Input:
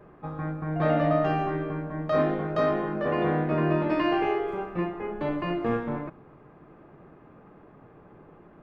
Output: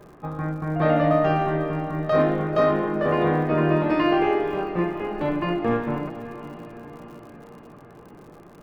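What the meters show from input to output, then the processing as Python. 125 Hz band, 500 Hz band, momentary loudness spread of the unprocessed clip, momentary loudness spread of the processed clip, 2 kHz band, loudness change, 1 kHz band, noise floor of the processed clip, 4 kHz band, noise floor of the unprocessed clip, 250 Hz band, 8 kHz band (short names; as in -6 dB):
+4.0 dB, +4.5 dB, 9 LU, 18 LU, +4.0 dB, +4.5 dB, +4.5 dB, -47 dBFS, +4.0 dB, -53 dBFS, +4.0 dB, n/a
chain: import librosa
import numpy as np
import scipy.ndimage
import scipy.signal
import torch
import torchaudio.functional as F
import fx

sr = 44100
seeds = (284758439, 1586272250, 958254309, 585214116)

y = fx.echo_diffused(x, sr, ms=493, feedback_pct=59, wet_db=-13.0)
y = fx.dmg_crackle(y, sr, seeds[0], per_s=90.0, level_db=-46.0)
y = y * 10.0 ** (4.0 / 20.0)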